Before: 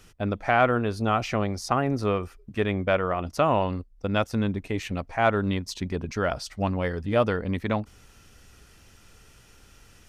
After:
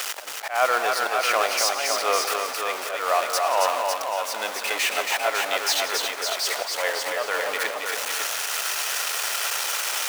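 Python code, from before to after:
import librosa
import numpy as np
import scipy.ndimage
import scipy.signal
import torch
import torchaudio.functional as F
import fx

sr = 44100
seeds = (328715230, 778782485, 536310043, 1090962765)

p1 = x + 0.5 * 10.0 ** (-27.0 / 20.0) * np.sign(x)
p2 = scipy.signal.sosfilt(scipy.signal.butter(4, 600.0, 'highpass', fs=sr, output='sos'), p1)
p3 = fx.auto_swell(p2, sr, attack_ms=292.0)
p4 = np.clip(p3, -10.0 ** (-17.5 / 20.0), 10.0 ** (-17.5 / 20.0))
p5 = p4 + fx.echo_multitap(p4, sr, ms=(96, 115, 175, 276, 554, 783), db=(-19.5, -19.0, -14.5, -4.5, -5.5, -17.0), dry=0)
p6 = fx.echo_crushed(p5, sr, ms=269, feedback_pct=35, bits=9, wet_db=-13)
y = p6 * librosa.db_to_amplitude(6.5)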